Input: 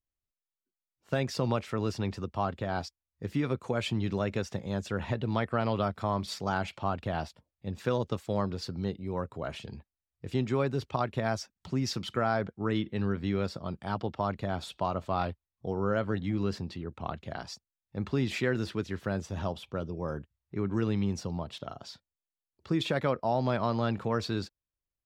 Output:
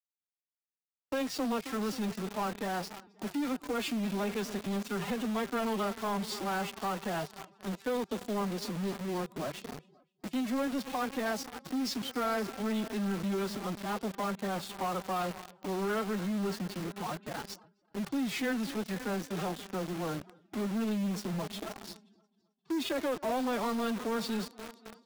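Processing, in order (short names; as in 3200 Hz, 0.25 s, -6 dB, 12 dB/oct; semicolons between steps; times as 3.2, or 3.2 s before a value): multi-head echo 0.265 s, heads first and second, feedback 58%, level -19 dB; formant-preserving pitch shift +12 st; in parallel at -3 dB: companded quantiser 2-bit; on the sum: expander -43 dBFS; gain -8.5 dB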